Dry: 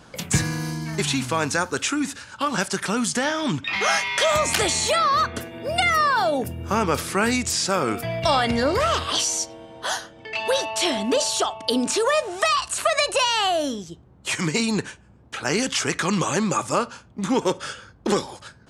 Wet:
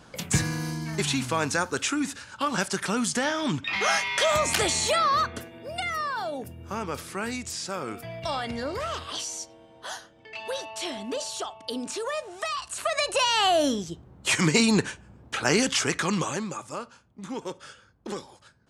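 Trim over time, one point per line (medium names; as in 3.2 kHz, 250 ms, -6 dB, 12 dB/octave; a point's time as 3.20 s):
5.14 s -3 dB
5.71 s -10.5 dB
12.51 s -10.5 dB
13.67 s +2 dB
15.36 s +2 dB
16.22 s -4.5 dB
16.58 s -13 dB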